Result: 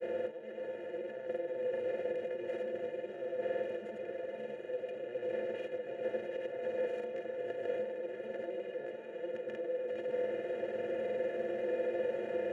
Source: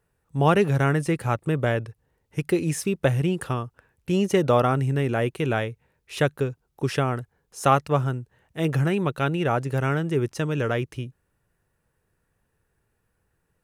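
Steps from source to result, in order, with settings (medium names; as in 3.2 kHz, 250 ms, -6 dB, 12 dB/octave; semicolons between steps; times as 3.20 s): spectral levelling over time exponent 0.2; compressor with a negative ratio -21 dBFS, ratio -1; tilt EQ -1.5 dB/octave; inharmonic resonator 95 Hz, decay 0.24 s, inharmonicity 0.03; speed mistake 44.1 kHz file played as 48 kHz; vowel filter e; peaking EQ 320 Hz +7.5 dB 0.73 oct; echo that smears into a reverb 642 ms, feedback 48%, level -5.5 dB; granulator, pitch spread up and down by 0 st; trim -3 dB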